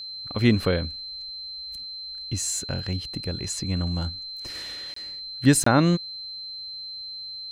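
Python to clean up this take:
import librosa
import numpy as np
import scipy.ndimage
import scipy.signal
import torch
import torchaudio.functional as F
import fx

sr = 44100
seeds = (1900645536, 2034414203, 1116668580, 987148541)

y = fx.notch(x, sr, hz=4100.0, q=30.0)
y = fx.fix_interpolate(y, sr, at_s=(4.94, 5.64), length_ms=24.0)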